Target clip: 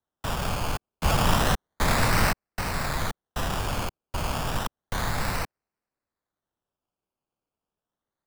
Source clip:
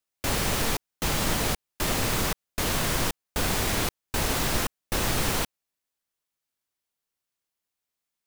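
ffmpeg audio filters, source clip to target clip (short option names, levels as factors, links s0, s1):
-filter_complex "[0:a]aresample=16000,aresample=44100,acrusher=samples=18:mix=1:aa=0.000001:lfo=1:lforange=10.8:lforate=0.31,acrossover=split=240|510|2200[s0][s1][s2][s3];[s1]aeval=exprs='(mod(75*val(0)+1,2)-1)/75':c=same[s4];[s0][s4][s2][s3]amix=inputs=4:normalize=0,asplit=3[s5][s6][s7];[s5]afade=t=out:st=1.03:d=0.02[s8];[s6]acontrast=63,afade=t=in:st=1.03:d=0.02,afade=t=out:st=2.31:d=0.02[s9];[s7]afade=t=in:st=2.31:d=0.02[s10];[s8][s9][s10]amix=inputs=3:normalize=0"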